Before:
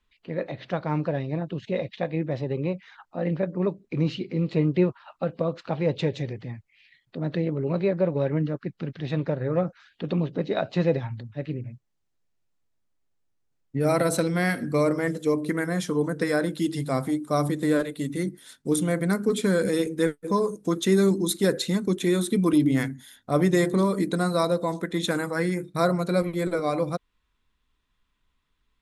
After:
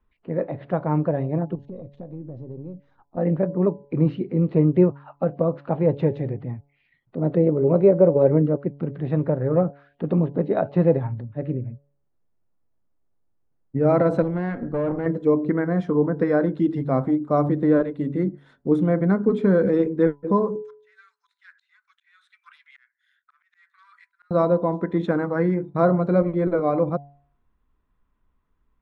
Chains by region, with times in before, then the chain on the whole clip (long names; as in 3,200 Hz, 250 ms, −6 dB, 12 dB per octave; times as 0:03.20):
0:01.55–0:03.17: gain on one half-wave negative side −3 dB + drawn EQ curve 280 Hz 0 dB, 2,100 Hz −18 dB, 9,100 Hz +9 dB + downward compressor 5 to 1, threshold −38 dBFS
0:06.33–0:08.88: notch filter 1,700 Hz, Q 11 + dynamic equaliser 480 Hz, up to +6 dB, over −36 dBFS, Q 1.3
0:14.22–0:15.06: tube saturation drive 25 dB, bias 0.7 + high-frequency loss of the air 84 metres
0:20.62–0:24.31: phase distortion by the signal itself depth 0.064 ms + Butterworth high-pass 1,400 Hz 48 dB per octave + volume swells 752 ms
whole clip: low-pass filter 1,100 Hz 12 dB per octave; hum removal 141.8 Hz, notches 7; level +5 dB